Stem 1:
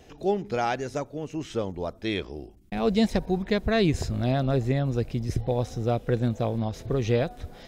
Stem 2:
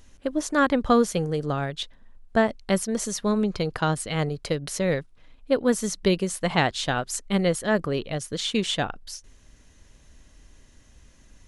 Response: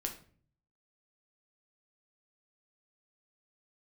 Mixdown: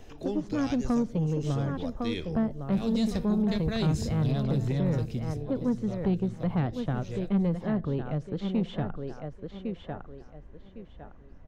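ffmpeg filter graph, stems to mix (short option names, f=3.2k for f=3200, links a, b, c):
-filter_complex "[0:a]volume=-4.5dB,afade=t=out:st=5.1:d=0.29:silence=0.281838,asplit=3[a][b][c];[b]volume=-6.5dB[d];[c]volume=-24dB[e];[1:a]lowpass=1.1k,volume=1.5dB,asplit=3[f][g][h];[g]volume=-17dB[i];[h]volume=-9dB[j];[2:a]atrim=start_sample=2205[k];[d][i]amix=inputs=2:normalize=0[l];[l][k]afir=irnorm=-1:irlink=0[m];[e][j]amix=inputs=2:normalize=0,aecho=0:1:1106|2212|3318|4424:1|0.23|0.0529|0.0122[n];[a][f][m][n]amix=inputs=4:normalize=0,acrossover=split=260|3000[o][p][q];[p]acompressor=threshold=-35dB:ratio=4[r];[o][r][q]amix=inputs=3:normalize=0,asoftclip=type=tanh:threshold=-18.5dB"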